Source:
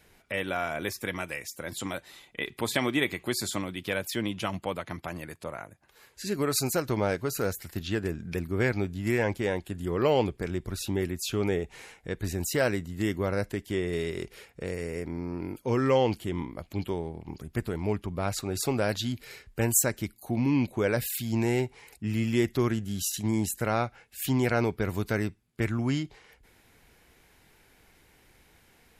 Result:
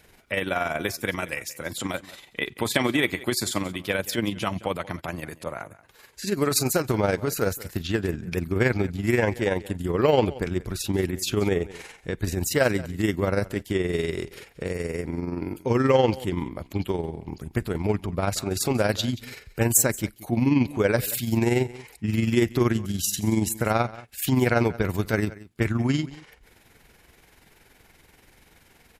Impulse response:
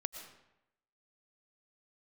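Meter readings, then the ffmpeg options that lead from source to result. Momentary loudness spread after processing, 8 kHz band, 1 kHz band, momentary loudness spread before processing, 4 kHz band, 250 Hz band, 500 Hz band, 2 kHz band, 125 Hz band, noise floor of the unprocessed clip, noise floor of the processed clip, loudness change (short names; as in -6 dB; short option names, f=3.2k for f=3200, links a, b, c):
11 LU, +4.5 dB, +4.0 dB, 11 LU, +4.5 dB, +4.5 dB, +4.0 dB, +4.5 dB, +4.5 dB, -61 dBFS, -58 dBFS, +4.5 dB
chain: -af "tremolo=f=21:d=0.519,acontrast=71,aecho=1:1:180:0.112"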